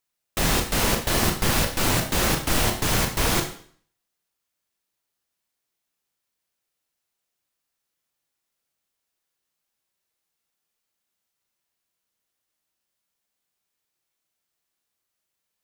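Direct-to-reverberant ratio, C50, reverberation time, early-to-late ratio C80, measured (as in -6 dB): 3.5 dB, 8.0 dB, 0.50 s, 12.0 dB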